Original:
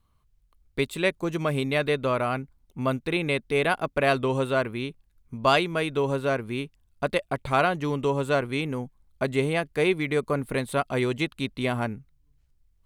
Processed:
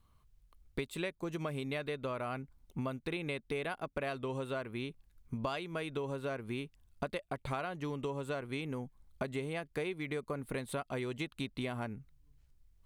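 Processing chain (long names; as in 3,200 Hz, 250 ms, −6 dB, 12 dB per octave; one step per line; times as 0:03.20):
downward compressor 12 to 1, threshold −34 dBFS, peak gain reduction 18.5 dB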